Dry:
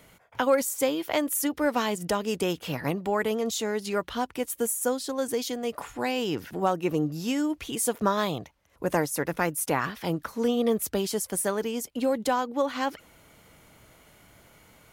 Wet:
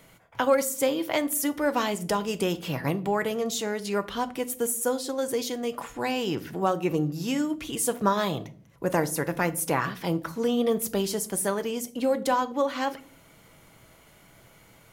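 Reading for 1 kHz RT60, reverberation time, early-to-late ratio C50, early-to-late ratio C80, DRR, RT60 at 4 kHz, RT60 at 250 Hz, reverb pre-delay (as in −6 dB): 0.40 s, 0.50 s, 18.5 dB, 23.0 dB, 9.5 dB, 0.30 s, 0.90 s, 5 ms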